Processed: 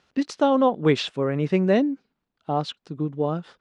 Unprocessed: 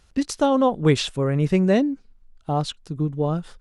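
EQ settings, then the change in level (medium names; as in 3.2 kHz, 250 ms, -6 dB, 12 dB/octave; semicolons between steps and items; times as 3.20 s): band-pass 190–4200 Hz; 0.0 dB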